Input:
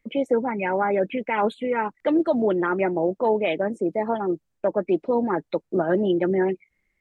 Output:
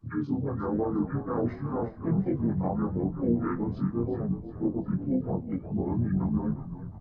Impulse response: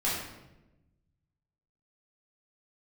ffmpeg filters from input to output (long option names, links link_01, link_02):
-filter_complex "[0:a]afftfilt=real='re':imag='-im':win_size=2048:overlap=0.75,asplit=2[link_01][link_02];[link_02]acompressor=threshold=-36dB:ratio=12,volume=1dB[link_03];[link_01][link_03]amix=inputs=2:normalize=0,asetrate=24046,aresample=44100,atempo=1.83401,flanger=delay=7.3:depth=7.2:regen=-88:speed=0.99:shape=sinusoidal,asplit=2[link_04][link_05];[link_05]asplit=5[link_06][link_07][link_08][link_09][link_10];[link_06]adelay=358,afreqshift=-40,volume=-11dB[link_11];[link_07]adelay=716,afreqshift=-80,volume=-17.2dB[link_12];[link_08]adelay=1074,afreqshift=-120,volume=-23.4dB[link_13];[link_09]adelay=1432,afreqshift=-160,volume=-29.6dB[link_14];[link_10]adelay=1790,afreqshift=-200,volume=-35.8dB[link_15];[link_11][link_12][link_13][link_14][link_15]amix=inputs=5:normalize=0[link_16];[link_04][link_16]amix=inputs=2:normalize=0,asplit=3[link_17][link_18][link_19];[link_18]asetrate=33038,aresample=44100,atempo=1.33484,volume=-7dB[link_20];[link_19]asetrate=58866,aresample=44100,atempo=0.749154,volume=-18dB[link_21];[link_17][link_20][link_21]amix=inputs=3:normalize=0"